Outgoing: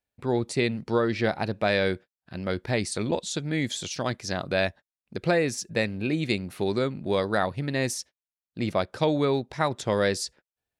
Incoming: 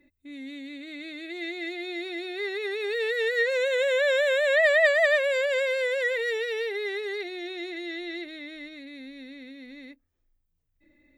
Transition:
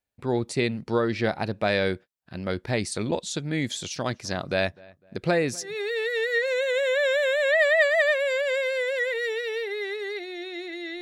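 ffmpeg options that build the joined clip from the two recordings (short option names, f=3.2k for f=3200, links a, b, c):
-filter_complex "[0:a]asettb=1/sr,asplit=3[a][b][c];[a]atrim=end=3.884[d];[b]atrim=start=3.88:end=5.76,asetpts=PTS-STARTPTS,afade=t=in:d=0.004:c=qsin,afade=t=out:st=1.876:d=0.004:c=qsin,asplit=2[e][f];[f]adelay=252,lowpass=f=2.1k:p=1,volume=-23.5dB,asplit=2[g][h];[h]adelay=252,lowpass=f=2.1k:p=1,volume=0.34[i];[e][g][i]amix=inputs=3:normalize=0,atrim=end_sample=82908[j];[c]atrim=start=5.756[k];[d][j]acrossfade=d=0.004:c1=hsin:c2=qsin[l];[l][k]acrossfade=d=0.004:c1=qsin:c2=hsin,apad=whole_dur=11.01,atrim=end=11.01,atrim=end=5.76,asetpts=PTS-STARTPTS[m];[1:a]atrim=start=2.64:end=8.05,asetpts=PTS-STARTPTS[n];[m][n]acrossfade=d=0.16:c1=tri:c2=tri"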